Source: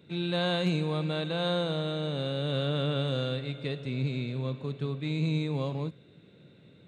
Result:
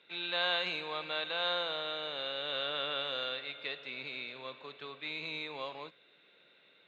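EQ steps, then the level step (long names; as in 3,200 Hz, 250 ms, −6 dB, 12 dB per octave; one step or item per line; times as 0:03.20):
band-pass filter 790–3,300 Hz
high-frequency loss of the air 85 metres
high-shelf EQ 2,300 Hz +10.5 dB
0.0 dB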